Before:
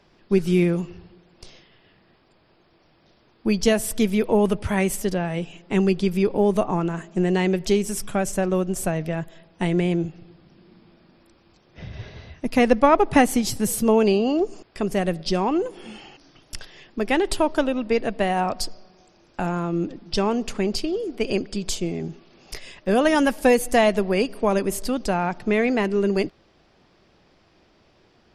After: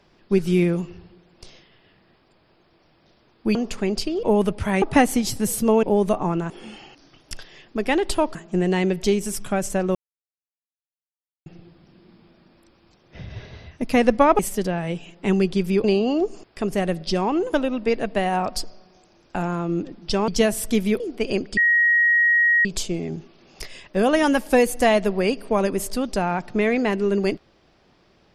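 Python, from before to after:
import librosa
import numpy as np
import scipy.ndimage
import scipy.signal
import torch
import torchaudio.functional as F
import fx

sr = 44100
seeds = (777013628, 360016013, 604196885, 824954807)

y = fx.edit(x, sr, fx.swap(start_s=3.55, length_s=0.72, other_s=20.32, other_length_s=0.68),
    fx.swap(start_s=4.86, length_s=1.45, other_s=13.02, other_length_s=1.01),
    fx.silence(start_s=8.58, length_s=1.51),
    fx.move(start_s=15.72, length_s=1.85, to_s=6.98),
    fx.insert_tone(at_s=21.57, length_s=1.08, hz=1890.0, db=-14.0), tone=tone)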